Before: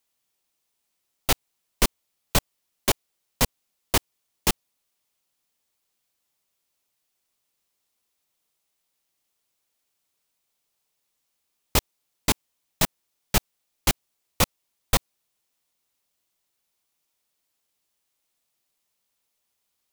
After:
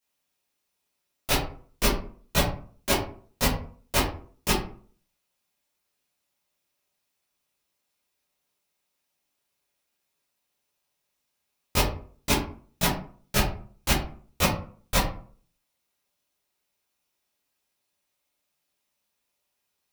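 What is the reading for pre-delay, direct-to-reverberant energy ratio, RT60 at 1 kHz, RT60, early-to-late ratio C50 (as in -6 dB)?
12 ms, -10.5 dB, 0.45 s, 0.45 s, 5.5 dB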